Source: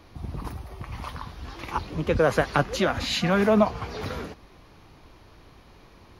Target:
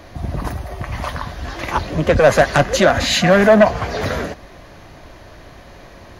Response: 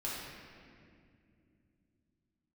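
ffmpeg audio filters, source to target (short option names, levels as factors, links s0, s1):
-filter_complex "[0:a]asplit=2[s0][s1];[s1]aeval=exprs='0.596*sin(PI/2*4.47*val(0)/0.596)':c=same,volume=0.316[s2];[s0][s2]amix=inputs=2:normalize=0,superequalizer=8b=2.24:11b=1.78:15b=1.58"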